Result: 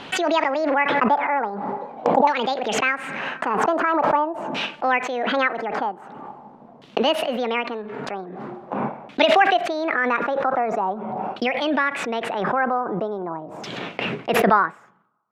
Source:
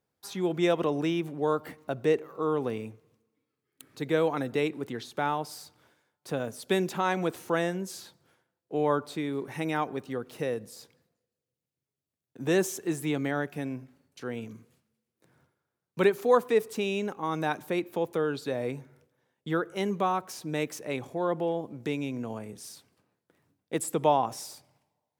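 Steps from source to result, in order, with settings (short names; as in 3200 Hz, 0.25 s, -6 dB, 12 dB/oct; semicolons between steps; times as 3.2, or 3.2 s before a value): speed glide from 188% -> 141%; LFO low-pass saw down 0.44 Hz 830–3500 Hz; backwards sustainer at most 23 dB/s; gain +3.5 dB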